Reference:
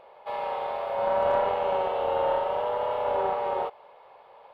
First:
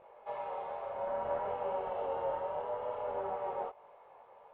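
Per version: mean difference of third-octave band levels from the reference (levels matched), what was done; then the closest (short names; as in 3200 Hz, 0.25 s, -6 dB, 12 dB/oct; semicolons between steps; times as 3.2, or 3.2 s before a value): 3.0 dB: compressor 1.5:1, threshold -36 dBFS, peak gain reduction 6 dB; air absorption 480 m; detuned doubles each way 18 cents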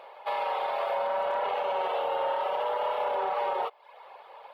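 4.5 dB: reverb removal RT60 0.55 s; HPF 920 Hz 6 dB/oct; limiter -29.5 dBFS, peak gain reduction 10 dB; gain +8.5 dB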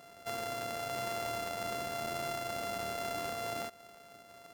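15.5 dB: sample sorter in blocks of 64 samples; compressor, threshold -32 dBFS, peak gain reduction 11.5 dB; gain -3 dB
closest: first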